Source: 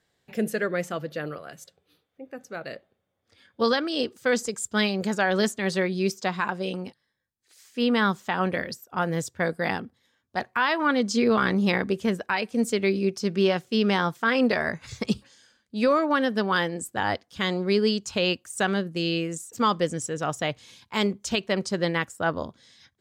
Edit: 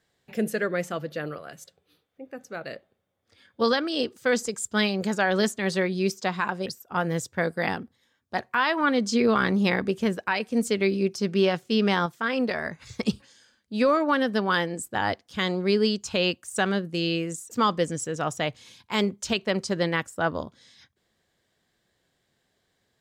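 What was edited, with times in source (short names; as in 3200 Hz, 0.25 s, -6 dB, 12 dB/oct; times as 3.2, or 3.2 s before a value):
6.66–8.68 cut
14.08–15.01 gain -4 dB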